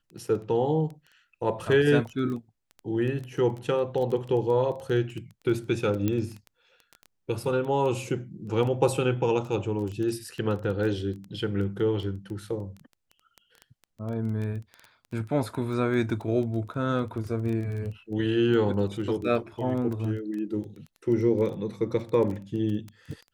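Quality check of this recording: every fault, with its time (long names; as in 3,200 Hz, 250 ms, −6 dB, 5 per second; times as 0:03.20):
surface crackle 10 per second −32 dBFS
0:06.08: click −14 dBFS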